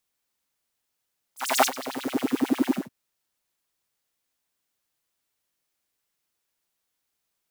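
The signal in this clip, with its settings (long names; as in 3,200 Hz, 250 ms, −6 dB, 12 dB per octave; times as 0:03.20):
subtractive patch with filter wobble C4, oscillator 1 triangle, interval −12 semitones, oscillator 2 level −5 dB, noise −15 dB, filter highpass, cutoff 390 Hz, Q 5.5, filter envelope 3 octaves, filter decay 0.79 s, attack 275 ms, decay 0.07 s, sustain −16.5 dB, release 0.17 s, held 1.36 s, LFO 11 Hz, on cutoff 1.8 octaves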